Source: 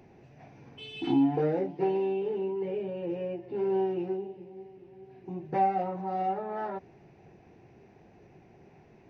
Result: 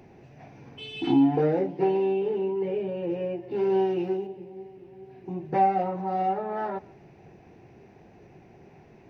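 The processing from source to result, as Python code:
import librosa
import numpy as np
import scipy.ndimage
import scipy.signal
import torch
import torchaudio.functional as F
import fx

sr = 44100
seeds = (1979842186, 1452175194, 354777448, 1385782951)

y = fx.high_shelf(x, sr, hz=2800.0, db=9.5, at=(3.51, 4.27))
y = y + 10.0 ** (-24.0 / 20.0) * np.pad(y, (int(145 * sr / 1000.0), 0))[:len(y)]
y = F.gain(torch.from_numpy(y), 4.0).numpy()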